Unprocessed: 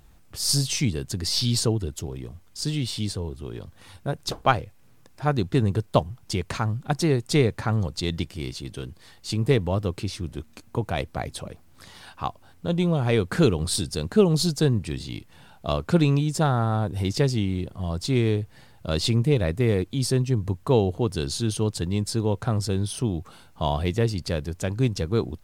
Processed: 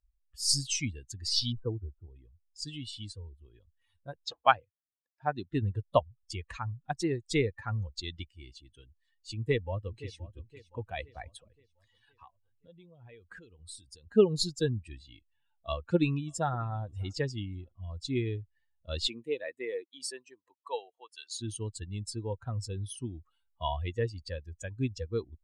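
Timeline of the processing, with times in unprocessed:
0:01.52–0:02.10: linear-phase brick-wall low-pass 1,600 Hz
0:04.25–0:05.53: band-pass filter 110–7,200 Hz
0:09.35–0:10.17: delay throw 520 ms, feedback 65%, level −9 dB
0:11.36–0:14.07: downward compressor, threshold −30 dBFS
0:15.67–0:16.53: delay throw 590 ms, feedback 30%, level −17 dB
0:19.06–0:21.40: high-pass filter 250 Hz → 980 Hz
whole clip: spectral dynamics exaggerated over time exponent 2; low-pass filter 9,600 Hz 24 dB per octave; parametric band 150 Hz −8.5 dB 1.2 octaves

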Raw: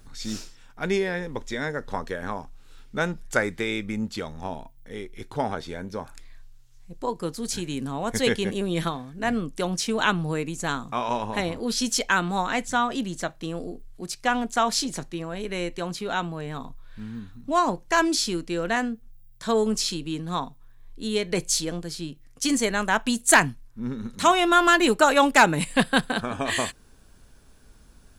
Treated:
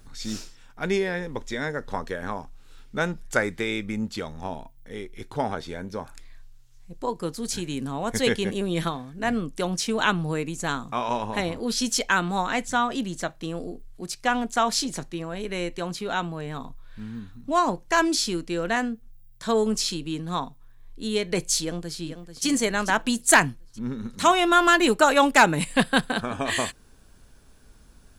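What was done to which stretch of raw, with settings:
0:21.62–0:22.46: delay throw 440 ms, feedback 45%, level −10 dB

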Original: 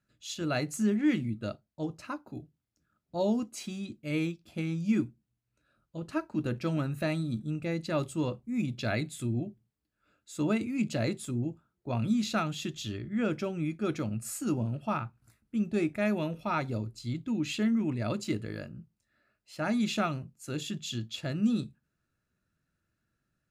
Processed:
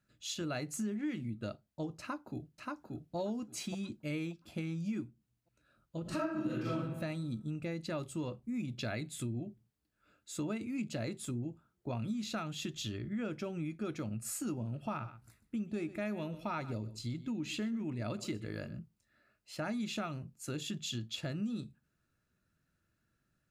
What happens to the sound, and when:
0:02.00–0:03.16: delay throw 580 ms, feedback 25%, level −3 dB
0:06.02–0:06.71: thrown reverb, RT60 0.95 s, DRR −10 dB
0:14.73–0:18.79: single-tap delay 125 ms −18 dB
whole clip: downward compressor 4 to 1, threshold −37 dBFS; level +1 dB

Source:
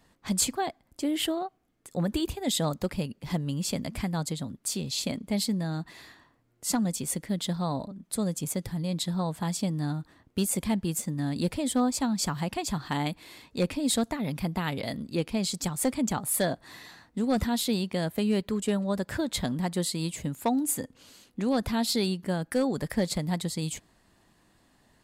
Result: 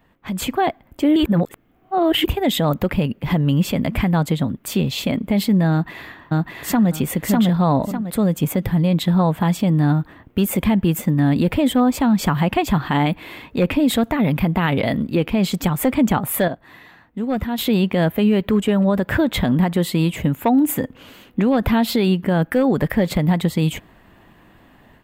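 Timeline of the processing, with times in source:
0:01.16–0:02.24: reverse
0:05.71–0:06.90: delay throw 600 ms, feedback 20%, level 0 dB
0:16.48–0:17.58: clip gain −10.5 dB
whole clip: flat-topped bell 6,700 Hz −15.5 dB; brickwall limiter −23.5 dBFS; automatic gain control gain up to 9.5 dB; level +5 dB

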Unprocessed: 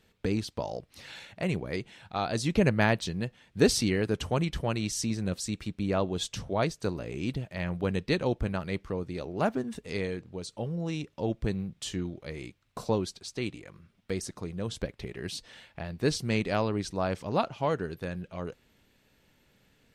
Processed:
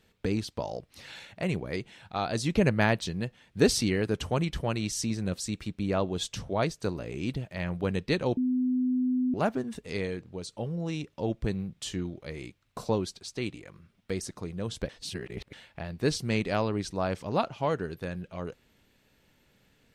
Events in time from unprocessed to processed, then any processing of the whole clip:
0:08.37–0:09.34: beep over 253 Hz −23.5 dBFS
0:14.89–0:15.53: reverse

